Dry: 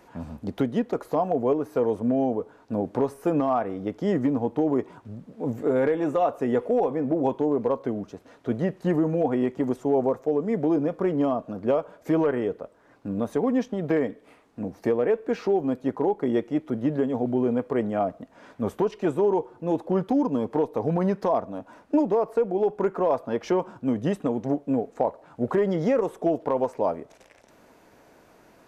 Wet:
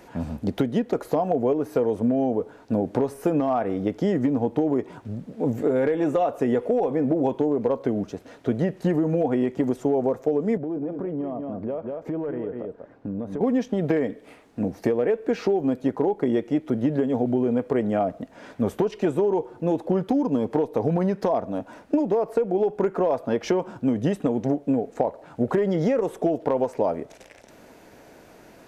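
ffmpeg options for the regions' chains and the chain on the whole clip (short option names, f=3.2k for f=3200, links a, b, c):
-filter_complex "[0:a]asettb=1/sr,asplit=3[a][b][c];[a]atrim=end=10.574[d];[b]atrim=start=10.57:end=13.41,asetpts=PTS-STARTPTS,afade=t=in:d=0.004:c=qsin,afade=t=out:st=2.836:d=0.004:c=qsin,lowpass=f=1k:p=1,aecho=1:1:193:0.316,atrim=end_sample=125244,acompressor=threshold=-34dB:ratio=4:attack=3.2:release=140:knee=1:detection=peak[e];[c]atrim=start=13.406[f];[d][e]acrossfade=d=0.004:c1=hsin:c2=qsin[g];[g][f]acrossfade=d=0.004:c1=qsin:c2=hsin,equalizer=f=1.1k:t=o:w=0.62:g=-5,acompressor=threshold=-25dB:ratio=6,volume=6.5dB"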